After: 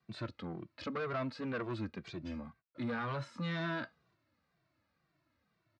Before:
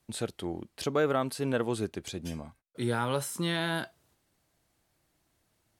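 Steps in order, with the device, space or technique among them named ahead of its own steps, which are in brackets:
barber-pole flanger into a guitar amplifier (barber-pole flanger 2.1 ms −2 Hz; soft clipping −32 dBFS, distortion −9 dB; loudspeaker in its box 94–4,100 Hz, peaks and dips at 410 Hz −8 dB, 800 Hz −7 dB, 1,200 Hz +4 dB, 3,200 Hz −9 dB)
level +1.5 dB

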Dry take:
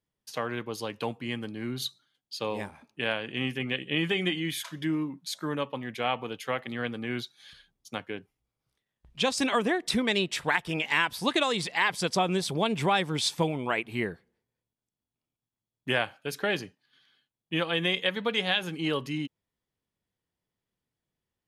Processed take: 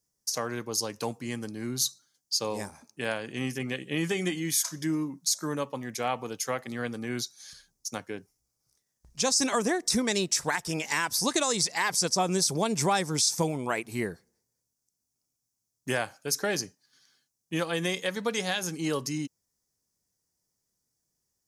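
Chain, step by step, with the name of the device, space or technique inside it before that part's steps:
over-bright horn tweeter (high shelf with overshoot 4,300 Hz +11 dB, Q 3; brickwall limiter −14.5 dBFS, peak gain reduction 11 dB)

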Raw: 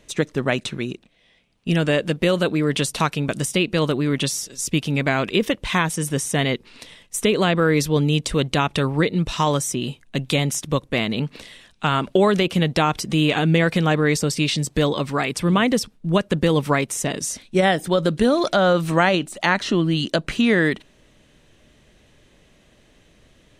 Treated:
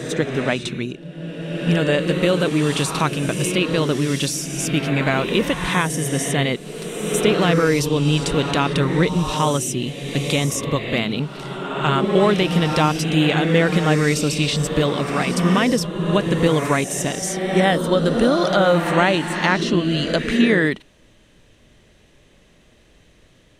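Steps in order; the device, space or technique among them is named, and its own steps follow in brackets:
reverse reverb (reversed playback; convolution reverb RT60 2.2 s, pre-delay 28 ms, DRR 4.5 dB; reversed playback)

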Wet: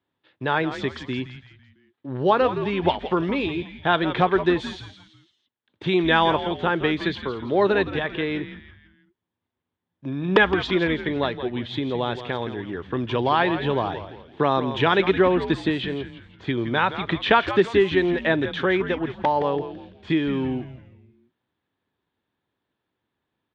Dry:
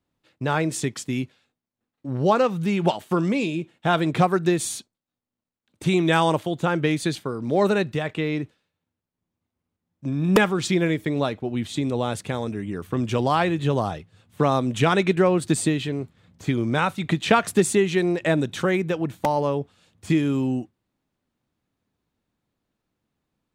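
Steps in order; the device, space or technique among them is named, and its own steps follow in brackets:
frequency-shifting delay pedal into a guitar cabinet (echo with shifted repeats 167 ms, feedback 42%, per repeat −120 Hz, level −10.5 dB; loudspeaker in its box 87–4,000 Hz, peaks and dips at 150 Hz −4 dB, 210 Hz −4 dB, 390 Hz +4 dB, 940 Hz +5 dB, 1,700 Hz +7 dB, 3,400 Hz +7 dB)
level −1.5 dB

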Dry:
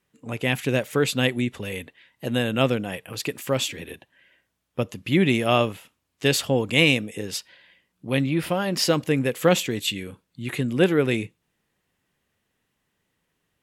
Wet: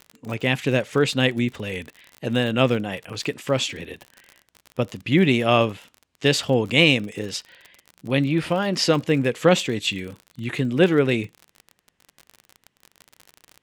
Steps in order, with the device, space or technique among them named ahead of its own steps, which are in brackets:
lo-fi chain (low-pass filter 6,900 Hz 12 dB per octave; tape wow and flutter; surface crackle 46 per second −32 dBFS)
level +2 dB

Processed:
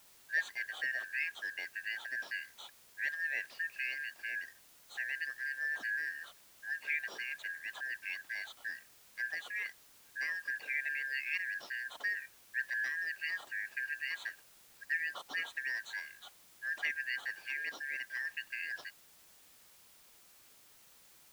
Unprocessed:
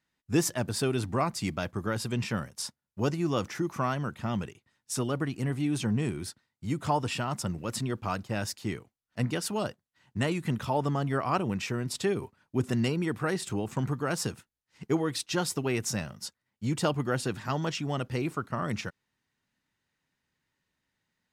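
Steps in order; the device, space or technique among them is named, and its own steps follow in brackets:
high-pass filter 120 Hz
split-band scrambled radio (band-splitting scrambler in four parts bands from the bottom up 3142; band-pass filter 400–3,000 Hz; white noise bed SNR 21 dB)
level −7.5 dB

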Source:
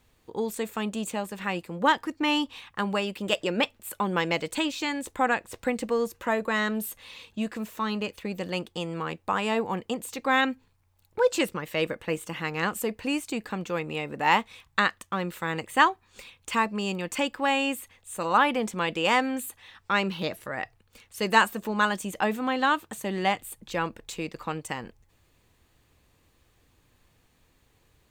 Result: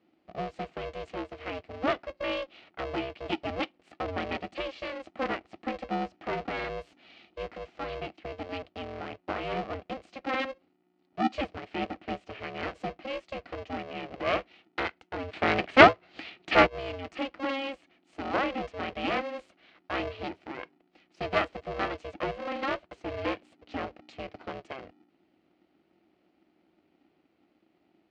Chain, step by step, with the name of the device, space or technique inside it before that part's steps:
0:15.33–0:16.67: octave-band graphic EQ 125/250/500/1,000/2,000/4,000/8,000 Hz +11/+6/+7/+8/+11/+11/+5 dB
ring modulator pedal into a guitar cabinet (ring modulator with a square carrier 270 Hz; loudspeaker in its box 79–4,000 Hz, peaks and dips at 130 Hz −7 dB, 320 Hz +9 dB, 670 Hz +5 dB, 980 Hz −5 dB, 1,600 Hz −5 dB, 3,600 Hz −6 dB)
level −6.5 dB

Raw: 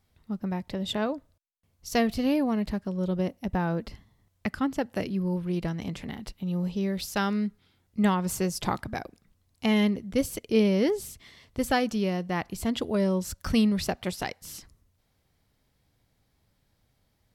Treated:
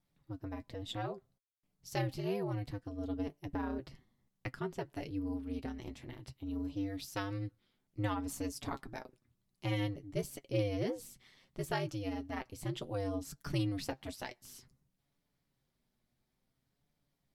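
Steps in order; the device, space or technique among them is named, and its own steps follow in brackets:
alien voice (ring modulation 100 Hz; flanger 0.59 Hz, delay 6.8 ms, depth 1.5 ms, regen +48%)
level −4 dB

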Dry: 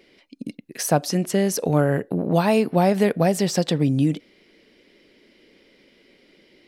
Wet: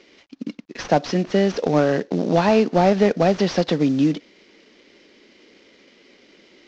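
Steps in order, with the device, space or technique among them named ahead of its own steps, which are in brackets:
early wireless headset (high-pass filter 180 Hz 24 dB per octave; variable-slope delta modulation 32 kbit/s)
level +3.5 dB

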